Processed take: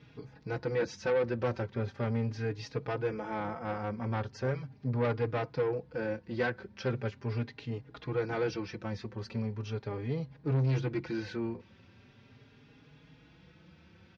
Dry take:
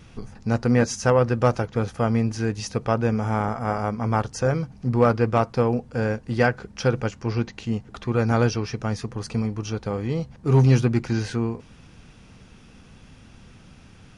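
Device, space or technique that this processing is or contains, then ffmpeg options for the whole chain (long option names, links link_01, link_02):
barber-pole flanger into a guitar amplifier: -filter_complex "[0:a]asplit=2[link_01][link_02];[link_02]adelay=4.4,afreqshift=0.39[link_03];[link_01][link_03]amix=inputs=2:normalize=1,asoftclip=type=tanh:threshold=-20dB,highpass=110,equalizer=frequency=210:width_type=q:width=4:gain=-6,equalizer=frequency=720:width_type=q:width=4:gain=-6,equalizer=frequency=1200:width_type=q:width=4:gain=-6,equalizer=frequency=2900:width_type=q:width=4:gain=-4,lowpass=frequency=4300:width=0.5412,lowpass=frequency=4300:width=1.3066,volume=-2.5dB"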